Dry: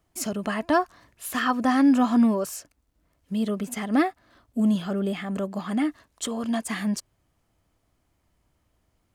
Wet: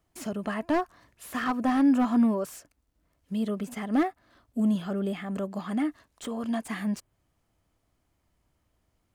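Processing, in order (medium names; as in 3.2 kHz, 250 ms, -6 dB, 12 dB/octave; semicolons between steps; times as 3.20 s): dynamic bell 4.8 kHz, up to -6 dB, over -45 dBFS, Q 0.75; slew-rate limiter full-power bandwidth 93 Hz; trim -3 dB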